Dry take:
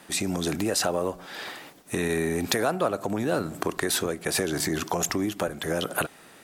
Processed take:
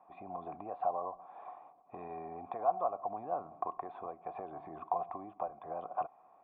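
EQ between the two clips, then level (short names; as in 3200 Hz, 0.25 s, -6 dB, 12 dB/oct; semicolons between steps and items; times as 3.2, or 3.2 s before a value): vocal tract filter a; +3.0 dB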